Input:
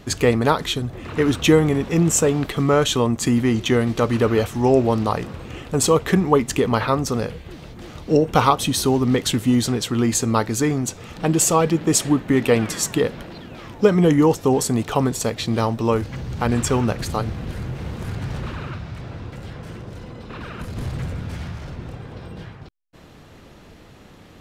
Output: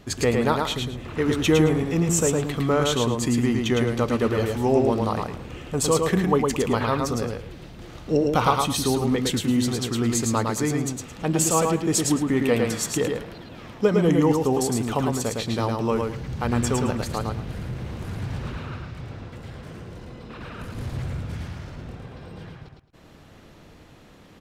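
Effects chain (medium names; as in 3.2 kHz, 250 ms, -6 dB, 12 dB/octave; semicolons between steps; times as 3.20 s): feedback delay 109 ms, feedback 21%, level -3.5 dB; trim -5 dB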